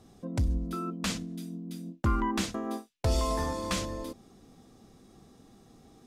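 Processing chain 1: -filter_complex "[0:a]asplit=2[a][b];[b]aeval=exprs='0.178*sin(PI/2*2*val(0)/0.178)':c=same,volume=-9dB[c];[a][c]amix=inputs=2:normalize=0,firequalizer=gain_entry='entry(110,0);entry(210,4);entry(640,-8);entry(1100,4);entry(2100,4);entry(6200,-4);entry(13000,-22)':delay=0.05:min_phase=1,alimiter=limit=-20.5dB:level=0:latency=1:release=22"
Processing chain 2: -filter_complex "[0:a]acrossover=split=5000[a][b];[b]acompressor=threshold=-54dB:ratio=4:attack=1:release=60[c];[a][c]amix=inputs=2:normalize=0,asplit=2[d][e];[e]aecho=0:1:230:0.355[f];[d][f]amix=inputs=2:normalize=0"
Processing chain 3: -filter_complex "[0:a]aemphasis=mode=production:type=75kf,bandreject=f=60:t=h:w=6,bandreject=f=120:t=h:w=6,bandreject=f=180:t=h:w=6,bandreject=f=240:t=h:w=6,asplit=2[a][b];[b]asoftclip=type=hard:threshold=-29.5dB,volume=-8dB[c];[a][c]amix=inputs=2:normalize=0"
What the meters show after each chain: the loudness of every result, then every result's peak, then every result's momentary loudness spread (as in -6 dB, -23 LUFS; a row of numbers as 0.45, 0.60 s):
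-29.5, -32.5, -28.0 LUFS; -20.5, -15.5, -12.0 dBFS; 21, 10, 11 LU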